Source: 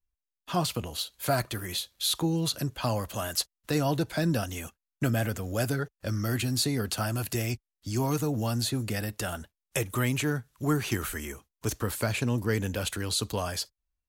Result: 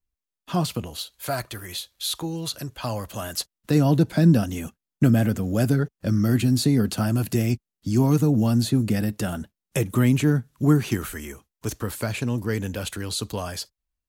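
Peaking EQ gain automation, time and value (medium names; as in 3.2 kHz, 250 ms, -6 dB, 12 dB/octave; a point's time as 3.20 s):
peaking EQ 200 Hz 1.9 oct
0.73 s +7 dB
1.19 s -3.5 dB
2.63 s -3.5 dB
3.33 s +5 dB
3.82 s +13 dB
10.68 s +13 dB
11.17 s +3 dB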